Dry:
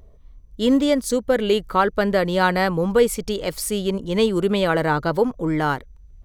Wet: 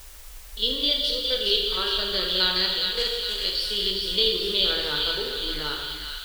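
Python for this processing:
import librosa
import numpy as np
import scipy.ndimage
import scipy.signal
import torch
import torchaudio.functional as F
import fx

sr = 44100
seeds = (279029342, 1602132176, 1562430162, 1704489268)

p1 = fx.spec_steps(x, sr, hold_ms=50)
p2 = fx.curve_eq(p1, sr, hz=(100.0, 260.0, 390.0, 750.0, 1400.0, 2200.0, 3200.0, 4600.0, 6600.0), db=(0, -21, -8, -23, -11, -12, 8, 10, -21))
p3 = fx.power_curve(p2, sr, exponent=1.4, at=(2.68, 3.4))
p4 = p3 + fx.echo_wet_highpass(p3, sr, ms=413, feedback_pct=59, hz=1700.0, wet_db=-4.0, dry=0)
p5 = fx.rev_gated(p4, sr, seeds[0], gate_ms=490, shape='falling', drr_db=0.5)
p6 = fx.quant_dither(p5, sr, seeds[1], bits=6, dither='triangular')
p7 = p5 + F.gain(torch.from_numpy(p6), -11.0).numpy()
y = fx.peak_eq(p7, sr, hz=130.0, db=-13.5, octaves=1.7)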